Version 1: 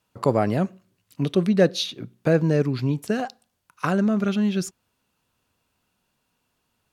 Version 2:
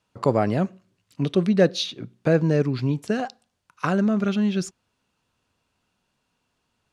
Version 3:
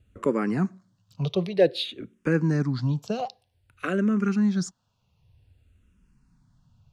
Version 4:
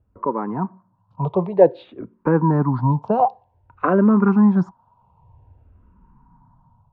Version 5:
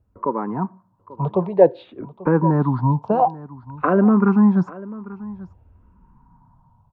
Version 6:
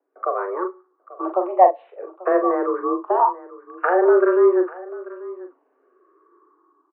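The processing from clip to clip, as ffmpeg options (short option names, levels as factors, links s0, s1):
-af "lowpass=8100"
-filter_complex "[0:a]acrossover=split=150[s0][s1];[s0]acompressor=mode=upward:threshold=0.0141:ratio=2.5[s2];[s2][s1]amix=inputs=2:normalize=0,asplit=2[s3][s4];[s4]afreqshift=-0.53[s5];[s3][s5]amix=inputs=2:normalize=1"
-af "dynaudnorm=f=340:g=5:m=3.98,lowpass=f=950:t=q:w=9.9,volume=0.708"
-af "aecho=1:1:839:0.119"
-filter_complex "[0:a]asplit=2[s0][s1];[s1]adelay=42,volume=0.447[s2];[s0][s2]amix=inputs=2:normalize=0,highpass=f=170:t=q:w=0.5412,highpass=f=170:t=q:w=1.307,lowpass=f=2300:t=q:w=0.5176,lowpass=f=2300:t=q:w=0.7071,lowpass=f=2300:t=q:w=1.932,afreqshift=180,volume=0.891"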